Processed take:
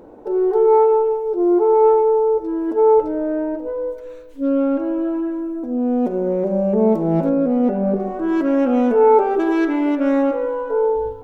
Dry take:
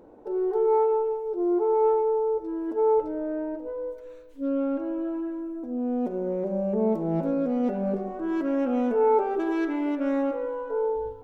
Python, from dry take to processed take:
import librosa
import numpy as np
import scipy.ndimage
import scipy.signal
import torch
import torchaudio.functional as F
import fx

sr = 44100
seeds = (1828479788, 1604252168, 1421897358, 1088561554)

y = fx.high_shelf(x, sr, hz=2200.0, db=-11.0, at=(7.29, 8.0))
y = y * librosa.db_to_amplitude(8.5)